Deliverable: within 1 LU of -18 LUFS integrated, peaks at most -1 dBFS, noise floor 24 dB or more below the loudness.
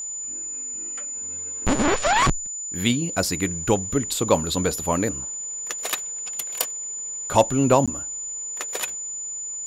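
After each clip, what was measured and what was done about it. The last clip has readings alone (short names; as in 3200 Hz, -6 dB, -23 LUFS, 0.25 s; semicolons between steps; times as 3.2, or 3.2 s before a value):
dropouts 1; longest dropout 16 ms; steady tone 7000 Hz; tone level -29 dBFS; loudness -24.0 LUFS; peak -3.5 dBFS; loudness target -18.0 LUFS
-> interpolate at 7.86, 16 ms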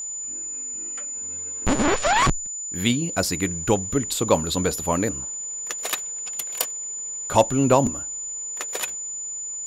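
dropouts 0; steady tone 7000 Hz; tone level -29 dBFS
-> notch 7000 Hz, Q 30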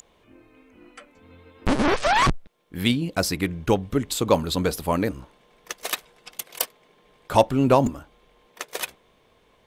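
steady tone none; loudness -24.0 LUFS; peak -4.0 dBFS; loudness target -18.0 LUFS
-> gain +6 dB; limiter -1 dBFS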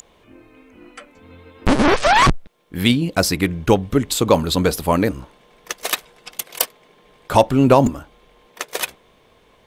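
loudness -18.0 LUFS; peak -1.0 dBFS; noise floor -55 dBFS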